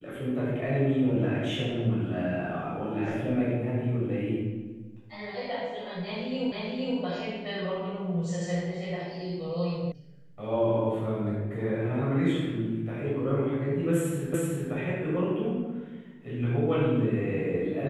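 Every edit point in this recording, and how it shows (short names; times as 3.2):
6.52 repeat of the last 0.47 s
9.92 sound cut off
14.34 repeat of the last 0.38 s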